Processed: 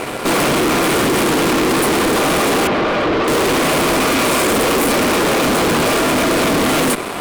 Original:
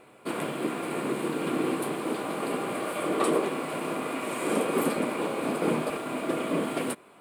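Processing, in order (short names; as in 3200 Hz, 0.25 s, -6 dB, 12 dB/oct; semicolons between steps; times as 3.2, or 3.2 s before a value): fuzz box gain 49 dB, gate -58 dBFS; 2.67–3.28 air absorption 220 m; gain -1 dB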